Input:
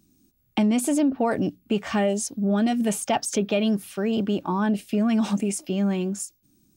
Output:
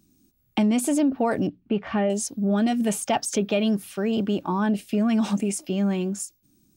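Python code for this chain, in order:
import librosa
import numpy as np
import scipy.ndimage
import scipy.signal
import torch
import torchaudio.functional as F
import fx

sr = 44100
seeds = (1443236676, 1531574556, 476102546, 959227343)

y = fx.air_absorb(x, sr, metres=320.0, at=(1.47, 2.1))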